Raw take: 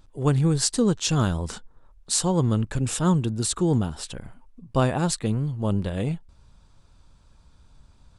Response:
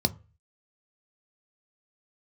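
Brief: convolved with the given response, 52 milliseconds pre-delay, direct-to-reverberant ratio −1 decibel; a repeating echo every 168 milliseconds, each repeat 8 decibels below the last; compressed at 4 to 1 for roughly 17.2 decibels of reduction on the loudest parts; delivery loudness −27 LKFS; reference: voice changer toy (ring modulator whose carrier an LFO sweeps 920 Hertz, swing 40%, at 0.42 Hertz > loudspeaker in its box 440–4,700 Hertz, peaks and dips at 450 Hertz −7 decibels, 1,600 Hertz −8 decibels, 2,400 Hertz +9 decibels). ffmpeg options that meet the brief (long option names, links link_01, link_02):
-filter_complex "[0:a]acompressor=threshold=-38dB:ratio=4,aecho=1:1:168|336|504|672|840:0.398|0.159|0.0637|0.0255|0.0102,asplit=2[link_01][link_02];[1:a]atrim=start_sample=2205,adelay=52[link_03];[link_02][link_03]afir=irnorm=-1:irlink=0,volume=-8dB[link_04];[link_01][link_04]amix=inputs=2:normalize=0,aeval=exprs='val(0)*sin(2*PI*920*n/s+920*0.4/0.42*sin(2*PI*0.42*n/s))':channel_layout=same,highpass=440,equalizer=frequency=450:width_type=q:width=4:gain=-7,equalizer=frequency=1600:width_type=q:width=4:gain=-8,equalizer=frequency=2400:width_type=q:width=4:gain=9,lowpass=frequency=4700:width=0.5412,lowpass=frequency=4700:width=1.3066,volume=6.5dB"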